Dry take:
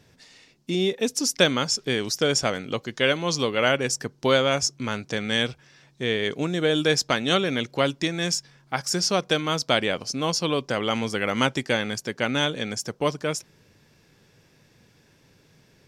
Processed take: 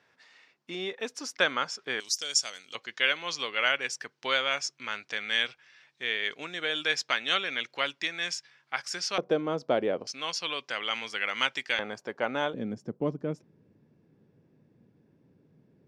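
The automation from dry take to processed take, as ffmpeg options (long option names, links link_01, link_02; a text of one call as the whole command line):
ffmpeg -i in.wav -af "asetnsamples=nb_out_samples=441:pad=0,asendcmd='2 bandpass f 6300;2.75 bandpass f 2200;9.18 bandpass f 450;10.07 bandpass f 2400;11.79 bandpass f 800;12.54 bandpass f 240',bandpass=frequency=1400:width_type=q:width=1.1:csg=0" out.wav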